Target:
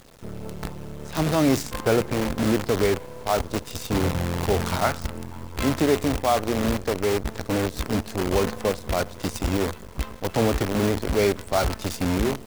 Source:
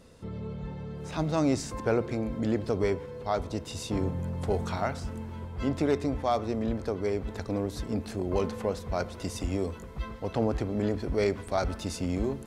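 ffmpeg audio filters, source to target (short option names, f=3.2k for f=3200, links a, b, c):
-filter_complex "[0:a]asplit=3[a][b][c];[a]afade=t=out:st=4.83:d=0.02[d];[b]adynamicequalizer=threshold=0.00631:dfrequency=1200:dqfactor=1.2:tfrequency=1200:tqfactor=1.2:attack=5:release=100:ratio=0.375:range=2.5:mode=boostabove:tftype=bell,afade=t=in:st=4.83:d=0.02,afade=t=out:st=5.78:d=0.02[e];[c]afade=t=in:st=5.78:d=0.02[f];[d][e][f]amix=inputs=3:normalize=0,acrusher=bits=6:dc=4:mix=0:aa=0.000001,volume=5.5dB"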